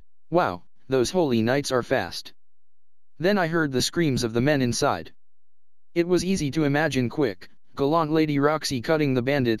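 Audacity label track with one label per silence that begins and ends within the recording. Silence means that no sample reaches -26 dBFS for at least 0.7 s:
2.200000	3.210000	silence
5.010000	5.970000	silence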